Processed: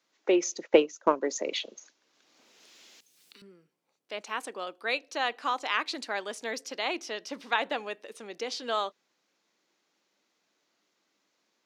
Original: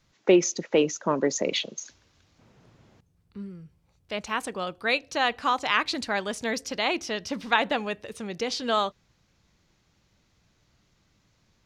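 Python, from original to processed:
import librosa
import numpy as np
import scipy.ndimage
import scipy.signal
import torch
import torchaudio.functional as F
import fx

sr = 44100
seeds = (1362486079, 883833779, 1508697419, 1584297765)

y = scipy.signal.sosfilt(scipy.signal.butter(4, 280.0, 'highpass', fs=sr, output='sos'), x)
y = fx.transient(y, sr, attack_db=10, sustain_db=-8, at=(0.66, 1.21), fade=0.02)
y = fx.band_squash(y, sr, depth_pct=100, at=(1.75, 3.42))
y = y * librosa.db_to_amplitude(-5.0)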